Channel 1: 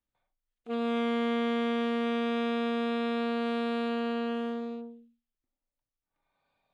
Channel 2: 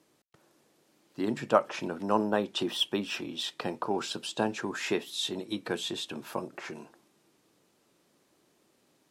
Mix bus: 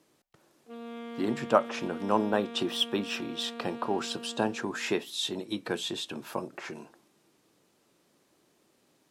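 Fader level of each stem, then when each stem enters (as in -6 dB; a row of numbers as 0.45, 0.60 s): -12.0, +0.5 dB; 0.00, 0.00 s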